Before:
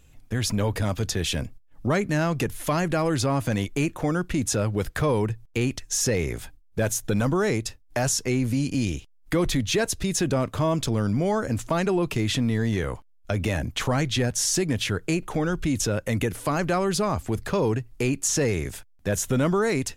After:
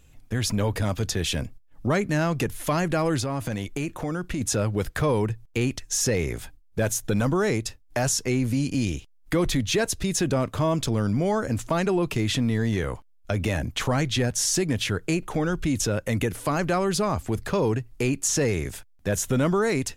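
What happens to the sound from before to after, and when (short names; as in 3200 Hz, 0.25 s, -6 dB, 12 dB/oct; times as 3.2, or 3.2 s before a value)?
3.19–4.41 compressor, threshold -24 dBFS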